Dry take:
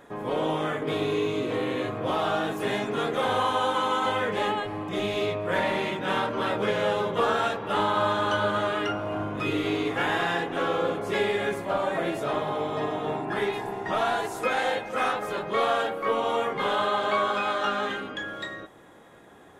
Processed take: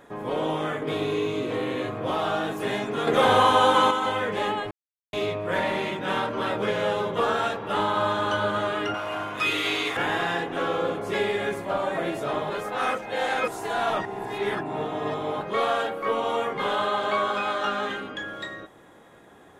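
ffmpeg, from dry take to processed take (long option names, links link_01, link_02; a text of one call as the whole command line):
ffmpeg -i in.wav -filter_complex "[0:a]asettb=1/sr,asplit=3[link_01][link_02][link_03];[link_01]atrim=end=3.074[link_04];[link_02]atrim=start=3.07:end=3.91,asetpts=PTS-STARTPTS,afade=type=in:duration=0.004:curve=qsin,afade=type=out:start_time=0.836:duration=0.004:curve=qsin,acontrast=78[link_05];[link_03]atrim=start=3.906[link_06];[link_04][link_05]acrossfade=duration=0.004:curve1=hsin:curve2=qsin[link_07];[link_07][link_06]acrossfade=duration=0.004:curve1=qsin:curve2=hsin,asettb=1/sr,asplit=3[link_08][link_09][link_10];[link_08]atrim=end=8.944[link_11];[link_09]atrim=start=8.94:end=9.97,asetpts=PTS-STARTPTS,afade=type=in:duration=0.004:curve=qsin,afade=type=out:start_time=1.026:duration=0.004:curve=qsin,tiltshelf=frequency=680:gain=-10[link_12];[link_10]atrim=start=9.966[link_13];[link_11][link_12]acrossfade=duration=0.004:curve1=hsin:curve2=qsin[link_14];[link_14][link_13]acrossfade=duration=0.004:curve1=qsin:curve2=hsin,asplit=5[link_15][link_16][link_17][link_18][link_19];[link_15]atrim=end=4.71,asetpts=PTS-STARTPTS,afade=type=out:start_time=4.706:duration=0.004:curve=hsin[link_20];[link_16]atrim=start=4.71:end=5.13,asetpts=PTS-STARTPTS,volume=0[link_21];[link_17]atrim=start=5.13:end=12.502,asetpts=PTS-STARTPTS,afade=type=in:duration=0.004:curve=hsin[link_22];[link_18]atrim=start=12.498:end=15.412,asetpts=PTS-STARTPTS,areverse[link_23];[link_19]atrim=start=15.408[link_24];[link_20][link_21][link_22]concat=n=3:v=0:a=1[link_25];[link_25][link_23]acrossfade=duration=0.004:curve1=hsin:curve2=hsin[link_26];[link_26][link_24]acrossfade=duration=0.004:curve1=hsin:curve2=hsin" out.wav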